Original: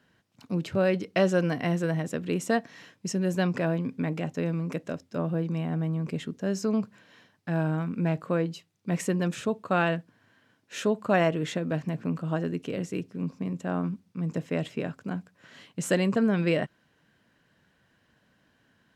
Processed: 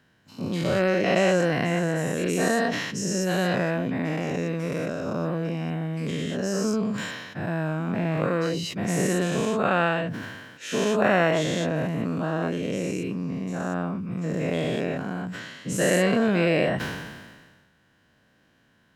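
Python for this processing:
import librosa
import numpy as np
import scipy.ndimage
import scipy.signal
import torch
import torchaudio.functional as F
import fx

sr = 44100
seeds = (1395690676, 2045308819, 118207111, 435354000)

y = fx.spec_dilate(x, sr, span_ms=240)
y = fx.sustainer(y, sr, db_per_s=39.0)
y = y * librosa.db_to_amplitude(-2.5)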